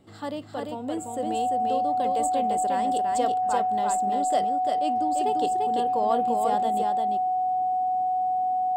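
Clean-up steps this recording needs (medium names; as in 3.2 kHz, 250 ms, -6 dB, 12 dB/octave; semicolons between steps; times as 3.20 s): band-stop 740 Hz, Q 30; inverse comb 344 ms -3.5 dB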